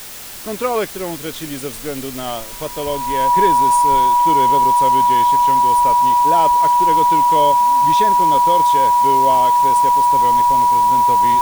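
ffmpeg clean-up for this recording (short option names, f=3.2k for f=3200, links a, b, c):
-af "adeclick=t=4,bandreject=f=970:w=30,afwtdn=0.022"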